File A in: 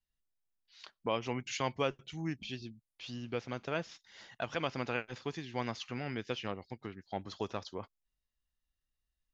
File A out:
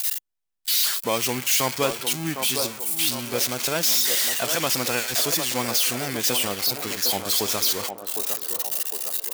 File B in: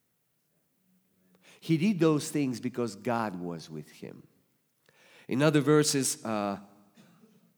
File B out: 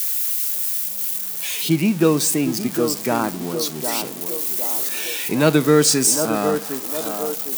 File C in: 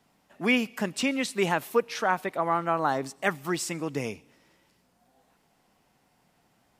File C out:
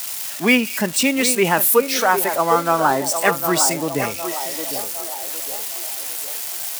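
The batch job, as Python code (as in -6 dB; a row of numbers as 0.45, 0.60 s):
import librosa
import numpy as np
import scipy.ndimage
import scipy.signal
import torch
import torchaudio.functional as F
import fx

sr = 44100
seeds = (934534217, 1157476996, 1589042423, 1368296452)

p1 = x + 0.5 * 10.0 ** (-21.0 / 20.0) * np.diff(np.sign(x), prepend=np.sign(x[:1]))
p2 = fx.peak_eq(p1, sr, hz=110.0, db=-3.0, octaves=0.95)
p3 = p2 + fx.echo_banded(p2, sr, ms=758, feedback_pct=59, hz=610.0, wet_db=-5.5, dry=0)
p4 = fx.noise_reduce_blind(p3, sr, reduce_db=6)
y = p4 * 10.0 ** (8.5 / 20.0)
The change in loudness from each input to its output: +17.0, +9.0, +9.0 LU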